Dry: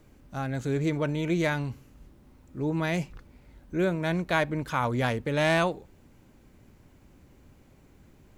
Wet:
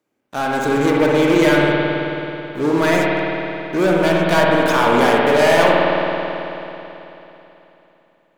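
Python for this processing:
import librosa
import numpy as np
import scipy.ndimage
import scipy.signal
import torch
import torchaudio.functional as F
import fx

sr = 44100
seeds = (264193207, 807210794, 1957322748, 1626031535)

y = scipy.signal.sosfilt(scipy.signal.butter(2, 300.0, 'highpass', fs=sr, output='sos'), x)
y = fx.leveller(y, sr, passes=5)
y = fx.rev_spring(y, sr, rt60_s=3.3, pass_ms=(54,), chirp_ms=50, drr_db=-3.0)
y = y * 10.0 ** (-3.0 / 20.0)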